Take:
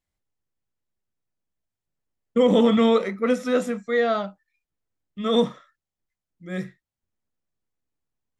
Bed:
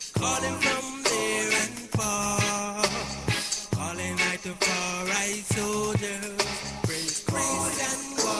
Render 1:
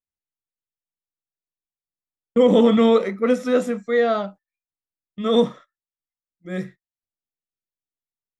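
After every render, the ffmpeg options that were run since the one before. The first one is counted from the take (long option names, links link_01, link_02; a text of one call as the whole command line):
ffmpeg -i in.wav -af "agate=range=-18dB:threshold=-42dB:ratio=16:detection=peak,equalizer=frequency=390:width_type=o:width=2.1:gain=3.5" out.wav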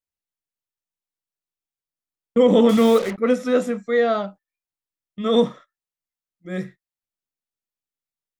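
ffmpeg -i in.wav -filter_complex "[0:a]asettb=1/sr,asplit=3[link_01][link_02][link_03];[link_01]atrim=end=2.694[link_04];[link_02]atrim=start=2.69:end=3.18,asetpts=PTS-STARTPTS,afade=type=in:duration=0.004:curve=qsin,afade=type=out:start_time=0.486:duration=0.004:curve=qsin,acrusher=bits=4:mix=0:aa=0.5[link_05];[link_03]atrim=start=3.176[link_06];[link_04][link_05]acrossfade=duration=0.004:curve1=hsin:curve2=qsin[link_07];[link_07][link_06]acrossfade=duration=0.004:curve1=qsin:curve2=hsin" out.wav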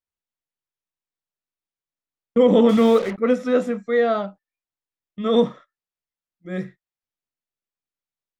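ffmpeg -i in.wav -af "lowpass=frequency=3700:poles=1" out.wav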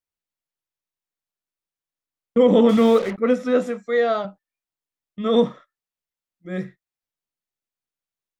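ffmpeg -i in.wav -filter_complex "[0:a]asettb=1/sr,asplit=3[link_01][link_02][link_03];[link_01]atrim=end=3.664[link_04];[link_02]atrim=start=3.66:end=4.25,asetpts=PTS-STARTPTS,afade=type=in:duration=0.004:curve=qsin,afade=type=out:start_time=0.586:duration=0.004:curve=qsin,bass=frequency=250:gain=-9,treble=frequency=4000:gain=6[link_05];[link_03]atrim=start=4.246[link_06];[link_04][link_05]acrossfade=duration=0.004:curve1=hsin:curve2=qsin[link_07];[link_07][link_06]acrossfade=duration=0.004:curve1=qsin:curve2=hsin" out.wav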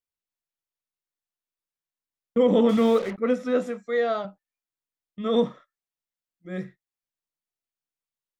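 ffmpeg -i in.wav -af "volume=-4.5dB" out.wav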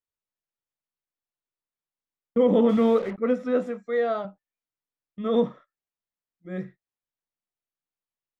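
ffmpeg -i in.wav -af "highshelf=frequency=3300:gain=-11.5" out.wav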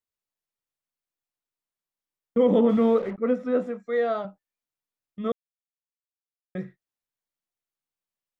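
ffmpeg -i in.wav -filter_complex "[0:a]asettb=1/sr,asplit=3[link_01][link_02][link_03];[link_01]atrim=end=2.594[link_04];[link_02]atrim=start=2.59:end=3.8,asetpts=PTS-STARTPTS,afade=type=in:duration=0.004:curve=qsin,afade=type=out:start_time=1.206:duration=0.004:curve=qsin,highshelf=frequency=2300:gain=-6.5[link_05];[link_03]atrim=start=3.796[link_06];[link_04][link_05]acrossfade=duration=0.004:curve1=hsin:curve2=qsin[link_07];[link_07][link_06]acrossfade=duration=0.004:curve1=qsin:curve2=hsin,asplit=3[link_08][link_09][link_10];[link_08]atrim=end=5.32,asetpts=PTS-STARTPTS,afade=type=out:start_time=5.316:duration=0.004:curve=hsin[link_11];[link_09]atrim=start=5.32:end=6.55,asetpts=PTS-STARTPTS,volume=0[link_12];[link_10]atrim=start=6.55,asetpts=PTS-STARTPTS,afade=type=in:duration=0.004:curve=hsin[link_13];[link_11][link_12][link_13]concat=n=3:v=0:a=1" out.wav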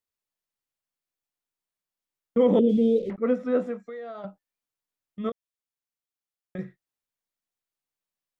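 ffmpeg -i in.wav -filter_complex "[0:a]asettb=1/sr,asplit=3[link_01][link_02][link_03];[link_01]atrim=end=2.594[link_04];[link_02]atrim=start=2.59:end=3.1,asetpts=PTS-STARTPTS,afade=type=in:duration=0.004:curve=qsin,afade=type=out:start_time=0.506:duration=0.004:curve=qsin,asuperstop=centerf=1200:order=8:qfactor=0.52[link_05];[link_03]atrim=start=3.096[link_06];[link_04][link_05]acrossfade=duration=0.004:curve1=hsin:curve2=qsin[link_07];[link_07][link_06]acrossfade=duration=0.004:curve1=qsin:curve2=hsin,asettb=1/sr,asplit=3[link_08][link_09][link_10];[link_08]atrim=end=3.824[link_11];[link_09]atrim=start=3.82:end=4.24,asetpts=PTS-STARTPTS,afade=type=in:duration=0.004:curve=qsin,afade=type=out:start_time=0.416:duration=0.004:curve=qsin,acompressor=threshold=-35dB:ratio=8:attack=3.2:release=140:knee=1:detection=peak[link_12];[link_10]atrim=start=4.236[link_13];[link_11][link_12]acrossfade=duration=0.004:curve1=hsin:curve2=qsin[link_14];[link_14][link_13]acrossfade=duration=0.004:curve1=qsin:curve2=hsin,asettb=1/sr,asplit=3[link_15][link_16][link_17];[link_15]atrim=end=5.294[link_18];[link_16]atrim=start=5.29:end=6.59,asetpts=PTS-STARTPTS,afade=type=in:duration=0.004:curve=qsin,afade=type=out:start_time=1.296:duration=0.004:curve=qsin,acompressor=threshold=-31dB:ratio=6:attack=3.2:release=140:knee=1:detection=peak[link_19];[link_17]atrim=start=6.586[link_20];[link_18][link_19]acrossfade=duration=0.004:curve1=hsin:curve2=qsin[link_21];[link_21][link_20]acrossfade=duration=0.004:curve1=qsin:curve2=hsin" out.wav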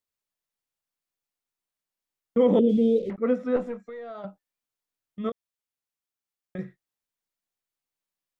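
ffmpeg -i in.wav -filter_complex "[0:a]asettb=1/sr,asplit=3[link_01][link_02][link_03];[link_01]atrim=end=3.564[link_04];[link_02]atrim=start=3.56:end=4.11,asetpts=PTS-STARTPTS,afade=type=in:duration=0.004:curve=qsin,afade=type=out:start_time=0.546:duration=0.004:curve=qsin,aeval=exprs='(tanh(11.2*val(0)+0.35)-tanh(0.35))/11.2':channel_layout=same[link_05];[link_03]atrim=start=4.106[link_06];[link_04][link_05]acrossfade=duration=0.004:curve1=hsin:curve2=qsin[link_07];[link_07][link_06]acrossfade=duration=0.004:curve1=qsin:curve2=hsin" out.wav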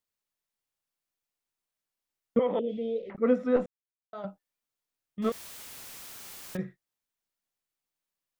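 ffmpeg -i in.wav -filter_complex "[0:a]asettb=1/sr,asplit=3[link_01][link_02][link_03];[link_01]atrim=end=2.394[link_04];[link_02]atrim=start=2.39:end=3.15,asetpts=PTS-STARTPTS,afade=type=in:duration=0.004:curve=qsin,afade=type=out:start_time=0.756:duration=0.004:curve=qsin,acrossover=split=600 3300:gain=0.158 1 0.0631[link_05][link_06][link_07];[link_05][link_06][link_07]amix=inputs=3:normalize=0[link_08];[link_03]atrim=start=3.146[link_09];[link_04][link_08]acrossfade=duration=0.004:curve1=hsin:curve2=qsin[link_10];[link_10][link_09]acrossfade=duration=0.004:curve1=qsin:curve2=hsin,asettb=1/sr,asplit=3[link_11][link_12][link_13];[link_11]atrim=end=5.224[link_14];[link_12]atrim=start=5.22:end=6.57,asetpts=PTS-STARTPTS,afade=type=in:duration=0.004:curve=qsin,afade=type=out:start_time=1.346:duration=0.004:curve=qsin,aeval=exprs='val(0)+0.5*0.015*sgn(val(0))':channel_layout=same[link_15];[link_13]atrim=start=6.566[link_16];[link_14][link_15]acrossfade=duration=0.004:curve1=hsin:curve2=qsin[link_17];[link_17][link_16]acrossfade=duration=0.004:curve1=qsin:curve2=hsin,asplit=3[link_18][link_19][link_20];[link_18]atrim=end=3.66,asetpts=PTS-STARTPTS,afade=type=out:start_time=3.656:duration=0.004:curve=hsin[link_21];[link_19]atrim=start=3.66:end=4.13,asetpts=PTS-STARTPTS,volume=0[link_22];[link_20]atrim=start=4.13,asetpts=PTS-STARTPTS,afade=type=in:duration=0.004:curve=hsin[link_23];[link_21][link_22][link_23]concat=n=3:v=0:a=1" out.wav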